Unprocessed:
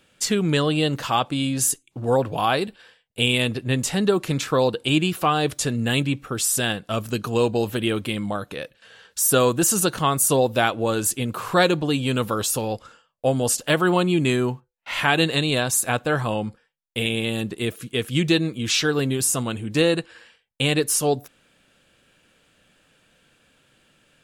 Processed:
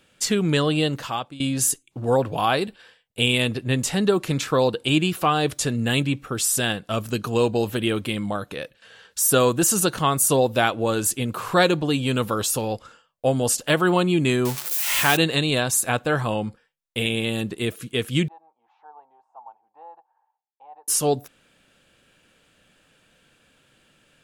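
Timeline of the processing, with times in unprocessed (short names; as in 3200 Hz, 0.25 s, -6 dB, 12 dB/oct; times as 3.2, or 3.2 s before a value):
0.8–1.4 fade out, to -18 dB
14.45–15.17 switching spikes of -14.5 dBFS
18.28–20.88 Butterworth band-pass 840 Hz, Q 5.6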